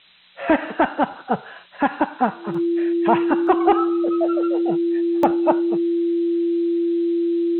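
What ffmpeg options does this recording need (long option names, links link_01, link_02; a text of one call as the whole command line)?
ffmpeg -i in.wav -af "bandreject=frequency=340:width=30,afftdn=noise_reduction=25:noise_floor=-40" out.wav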